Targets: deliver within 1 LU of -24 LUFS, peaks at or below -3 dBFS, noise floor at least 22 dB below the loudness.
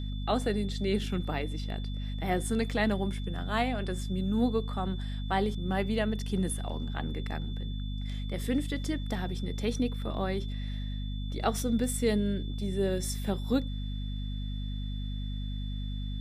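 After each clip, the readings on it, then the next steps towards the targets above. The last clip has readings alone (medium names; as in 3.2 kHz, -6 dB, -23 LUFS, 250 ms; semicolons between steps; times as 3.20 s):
hum 50 Hz; highest harmonic 250 Hz; hum level -32 dBFS; steady tone 3.5 kHz; tone level -48 dBFS; loudness -32.5 LUFS; peak level -12.5 dBFS; loudness target -24.0 LUFS
-> hum notches 50/100/150/200/250 Hz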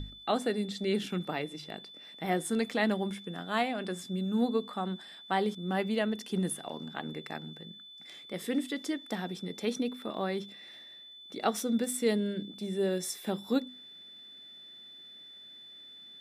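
hum not found; steady tone 3.5 kHz; tone level -48 dBFS
-> band-stop 3.5 kHz, Q 30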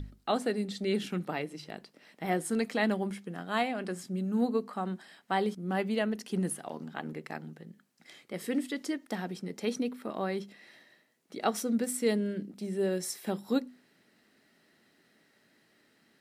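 steady tone not found; loudness -33.0 LUFS; peak level -13.5 dBFS; loudness target -24.0 LUFS
-> trim +9 dB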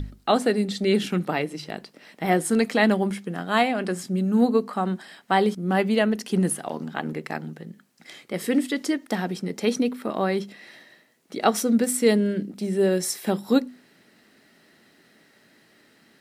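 loudness -24.0 LUFS; peak level -4.5 dBFS; noise floor -59 dBFS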